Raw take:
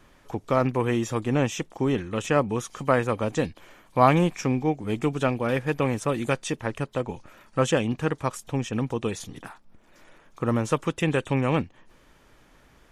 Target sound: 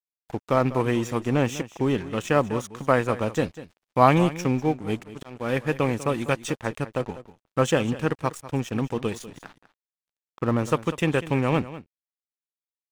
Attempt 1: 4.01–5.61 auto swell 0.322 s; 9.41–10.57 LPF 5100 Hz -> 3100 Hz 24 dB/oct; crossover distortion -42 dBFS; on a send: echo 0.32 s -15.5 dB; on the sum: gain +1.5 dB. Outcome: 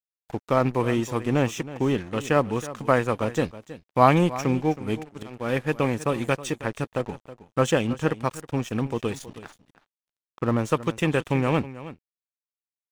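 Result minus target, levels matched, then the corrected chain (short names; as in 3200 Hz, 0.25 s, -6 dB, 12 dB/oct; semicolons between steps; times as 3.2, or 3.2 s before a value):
echo 0.124 s late
4.01–5.61 auto swell 0.322 s; 9.41–10.57 LPF 5100 Hz -> 3100 Hz 24 dB/oct; crossover distortion -42 dBFS; on a send: echo 0.196 s -15.5 dB; on the sum: gain +1.5 dB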